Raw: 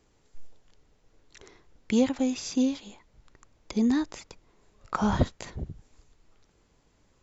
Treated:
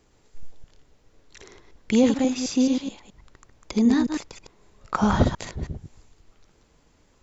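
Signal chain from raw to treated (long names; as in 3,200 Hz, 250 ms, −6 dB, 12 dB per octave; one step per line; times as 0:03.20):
delay that plays each chunk backwards 107 ms, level −5 dB
level +4 dB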